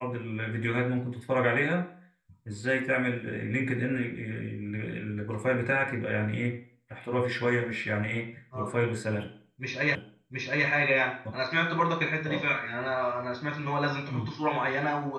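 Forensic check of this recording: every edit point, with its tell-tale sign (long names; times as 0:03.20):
0:09.95: the same again, the last 0.72 s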